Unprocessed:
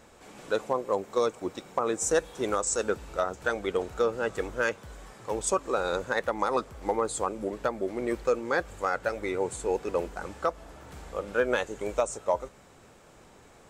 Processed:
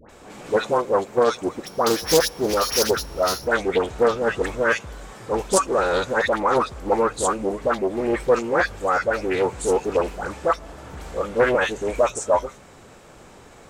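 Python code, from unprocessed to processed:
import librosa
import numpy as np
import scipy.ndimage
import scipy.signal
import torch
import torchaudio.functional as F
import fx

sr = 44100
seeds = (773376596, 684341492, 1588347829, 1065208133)

y = fx.sample_sort(x, sr, block=8, at=(1.55, 3.38), fade=0.02)
y = fx.dispersion(y, sr, late='highs', ms=95.0, hz=1300.0)
y = fx.doppler_dist(y, sr, depth_ms=0.3)
y = F.gain(torch.from_numpy(y), 8.0).numpy()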